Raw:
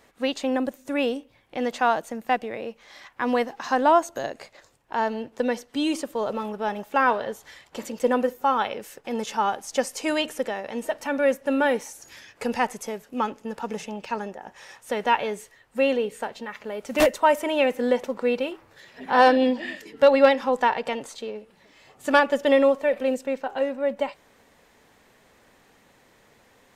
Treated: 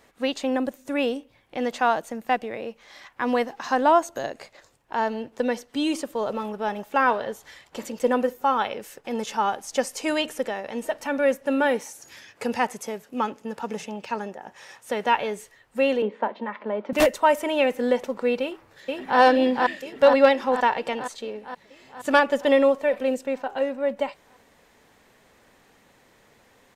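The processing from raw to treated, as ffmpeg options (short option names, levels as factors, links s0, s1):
-filter_complex "[0:a]asettb=1/sr,asplit=3[s0][s1][s2];[s0]atrim=end=11.454[s3];[s1]atrim=start=11.45:end=15.08,asetpts=PTS-STARTPTS,afade=t=in:d=0.004:c=qsin,afade=t=out:st=3.626:d=0.004:c=qsin,highpass=71[s4];[s2]atrim=start=15.076[s5];[s3][s4]acrossfade=d=0.004:c1=hsin:c2=qsin[s6];[s6][s5]acrossfade=d=0.004:c1=qsin:c2=hsin,asettb=1/sr,asplit=3[s7][s8][s9];[s7]atrim=end=16.024[s10];[s8]atrim=start=16.02:end=16.93,asetpts=PTS-STARTPTS,afade=t=in:d=0.004:c=qsin,afade=t=out:st=0.906:d=0.004:c=qsin,highpass=f=210:w=0.5412,highpass=f=210:w=1.3066,equalizer=f=210:t=q:w=4:g=9,equalizer=f=330:t=q:w=4:g=7,equalizer=f=590:t=q:w=4:g=6,equalizer=f=980:t=q:w=4:g=10,equalizer=f=2700:t=q:w=4:g=-5,lowpass=f=3200:w=0.5412,lowpass=f=3200:w=1.3066[s11];[s9]atrim=start=16.926[s12];[s10][s11]acrossfade=d=0.004:c1=hsin:c2=qsin[s13];[s13][s12]acrossfade=d=0.004:c1=qsin:c2=hsin,asplit=2[s14][s15];[s15]afade=t=in:st=18.41:d=0.01,afade=t=out:st=19.19:d=0.01,aecho=0:1:470|940|1410|1880|2350|2820|3290|3760|4230|4700|5170:0.841395|0.546907|0.355489|0.231068|0.150194|0.0976263|0.0634571|0.0412471|0.0268106|0.0174269|0.0113275[s16];[s14][s16]amix=inputs=2:normalize=0"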